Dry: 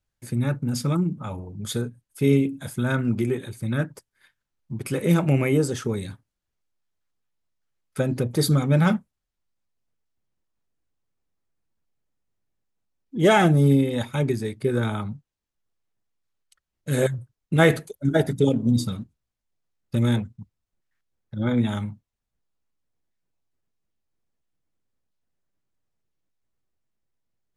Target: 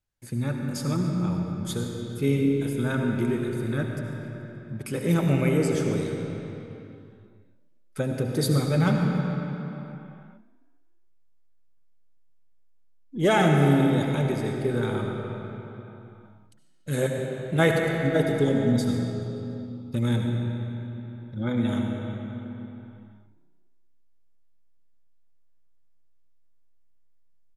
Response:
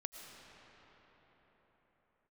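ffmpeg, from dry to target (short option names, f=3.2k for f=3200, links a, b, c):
-filter_complex "[0:a]asplit=6[a][b][c][d][e][f];[b]adelay=143,afreqshift=31,volume=-19.5dB[g];[c]adelay=286,afreqshift=62,volume=-24.4dB[h];[d]adelay=429,afreqshift=93,volume=-29.3dB[i];[e]adelay=572,afreqshift=124,volume=-34.1dB[j];[f]adelay=715,afreqshift=155,volume=-39dB[k];[a][g][h][i][j][k]amix=inputs=6:normalize=0[l];[1:a]atrim=start_sample=2205,asetrate=66150,aresample=44100[m];[l][m]afir=irnorm=-1:irlink=0,volume=4dB"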